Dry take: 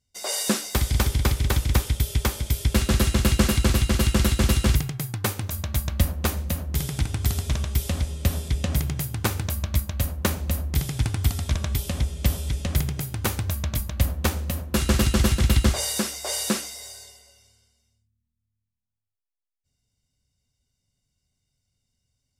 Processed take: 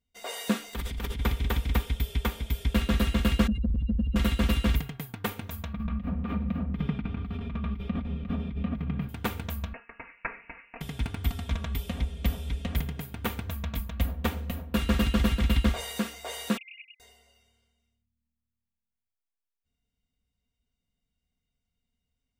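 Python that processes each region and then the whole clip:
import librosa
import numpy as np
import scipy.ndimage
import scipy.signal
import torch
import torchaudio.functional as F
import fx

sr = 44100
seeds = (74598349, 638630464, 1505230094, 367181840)

y = fx.chain(x, sr, fx.peak_eq(hz=700.0, db=-3.5, octaves=0.43),
    fx.over_compress(threshold_db=-27.0, ratio=-1.0),
    fx.doppler_dist(depth_ms=0.11), at=(0.73, 1.2))
y = fx.chain(y, sr, fx.spec_expand(power=2.6),
    fx.transient(attack_db=-10, sustain_db=3), at=(3.47, 4.16))
y = fx.chain(y, sr, fx.over_compress(threshold_db=-28.0, ratio=-1.0),
    fx.air_absorb(metres=370.0),
    fx.small_body(hz=(200.0, 1200.0, 2400.0), ring_ms=35, db=11), at=(5.73, 9.09))
y = fx.chain(y, sr, fx.highpass(hz=600.0, slope=12),
    fx.freq_invert(carrier_hz=2800), at=(9.73, 10.81))
y = fx.chain(y, sr, fx.sine_speech(),
    fx.steep_highpass(hz=2300.0, slope=96), at=(16.57, 17.0))
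y = fx.band_shelf(y, sr, hz=7400.0, db=-11.5, octaves=1.7)
y = y + 0.67 * np.pad(y, (int(4.3 * sr / 1000.0), 0))[:len(y)]
y = y * 10.0 ** (-5.5 / 20.0)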